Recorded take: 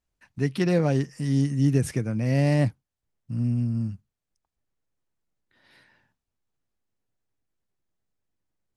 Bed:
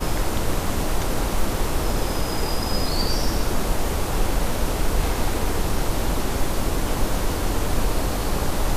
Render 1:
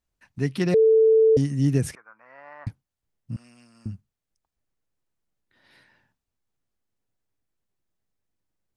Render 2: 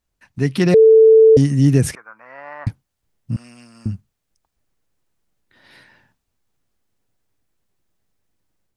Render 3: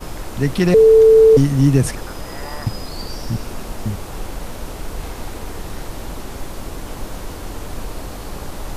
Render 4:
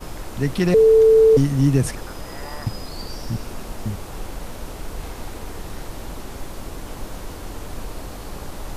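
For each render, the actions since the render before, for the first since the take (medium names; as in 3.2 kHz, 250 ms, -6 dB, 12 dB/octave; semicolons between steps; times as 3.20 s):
0.74–1.37 s: bleep 443 Hz -13 dBFS; 1.95–2.67 s: Butterworth band-pass 1.2 kHz, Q 2.1; 3.36–3.86 s: high-pass 1.1 kHz
level rider gain up to 4.5 dB; in parallel at -2 dB: peak limiter -13 dBFS, peak gain reduction 7 dB
add bed -6.5 dB
trim -3.5 dB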